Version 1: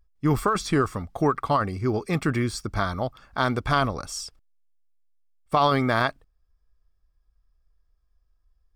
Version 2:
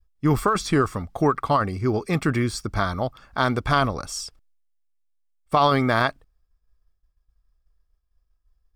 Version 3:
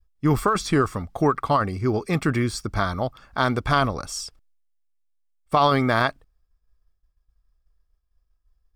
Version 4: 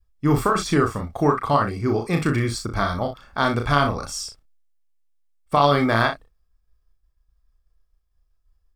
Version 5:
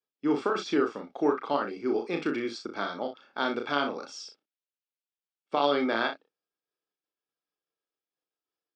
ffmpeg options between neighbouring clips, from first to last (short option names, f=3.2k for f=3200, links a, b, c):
-af "agate=range=-33dB:threshold=-60dB:ratio=3:detection=peak,volume=2dB"
-af anull
-af "aecho=1:1:35|61:0.562|0.266"
-af "highpass=f=270:w=0.5412,highpass=f=270:w=1.3066,equalizer=f=670:t=q:w=4:g=-6,equalizer=f=1.1k:t=q:w=4:g=-10,equalizer=f=1.9k:t=q:w=4:g=-8,equalizer=f=4.3k:t=q:w=4:g=-4,lowpass=f=4.8k:w=0.5412,lowpass=f=4.8k:w=1.3066,volume=-3.5dB"